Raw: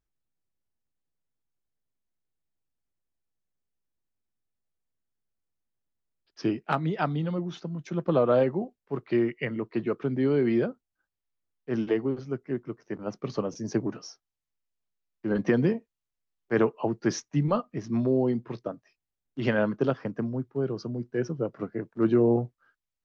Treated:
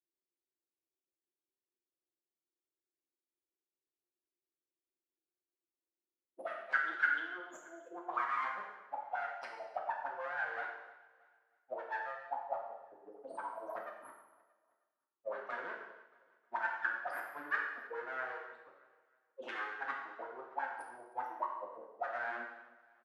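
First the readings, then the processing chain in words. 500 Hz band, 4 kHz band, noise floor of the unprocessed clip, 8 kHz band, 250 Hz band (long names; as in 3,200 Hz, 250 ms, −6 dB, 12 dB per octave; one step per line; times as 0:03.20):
−18.5 dB, −12.0 dB, below −85 dBFS, can't be measured, −32.0 dB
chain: spectral dynamics exaggerated over time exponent 3
in parallel at −7 dB: hard clipping −27.5 dBFS, distortion −9 dB
on the sum: drawn EQ curve 920 Hz 0 dB, 1,800 Hz −18 dB, 3,500 Hz +9 dB
full-wave rectification
high-pass filter 190 Hz 24 dB per octave
reversed playback
downward compressor 12 to 1, threshold −40 dBFS, peak gain reduction 14 dB
reversed playback
envelope filter 350–1,600 Hz, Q 6.5, up, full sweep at −43 dBFS
repeating echo 314 ms, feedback 37%, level −19.5 dB
reverb whose tail is shaped and stops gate 320 ms falling, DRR −1 dB
level +17 dB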